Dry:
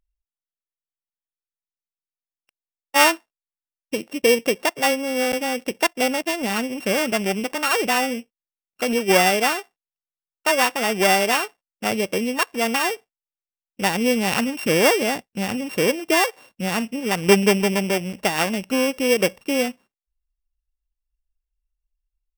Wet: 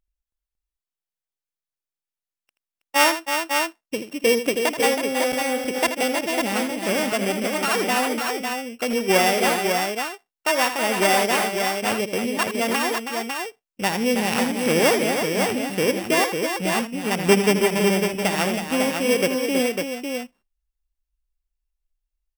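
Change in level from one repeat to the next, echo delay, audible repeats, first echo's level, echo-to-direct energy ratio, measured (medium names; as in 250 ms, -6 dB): no regular repeats, 80 ms, 3, -10.5 dB, -2.0 dB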